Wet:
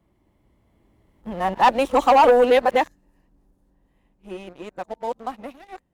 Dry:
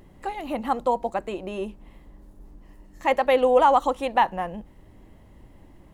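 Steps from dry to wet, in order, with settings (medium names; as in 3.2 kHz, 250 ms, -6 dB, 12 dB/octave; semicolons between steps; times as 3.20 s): reverse the whole clip; Doppler pass-by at 1.91 s, 18 m/s, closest 13 m; high-pass 49 Hz 6 dB/octave; waveshaping leveller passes 2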